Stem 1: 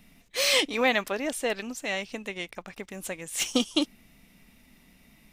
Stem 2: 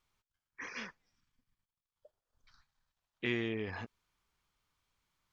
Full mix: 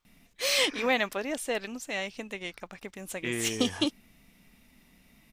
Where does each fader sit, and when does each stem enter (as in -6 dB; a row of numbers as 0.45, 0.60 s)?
-2.5, +1.5 dB; 0.05, 0.00 s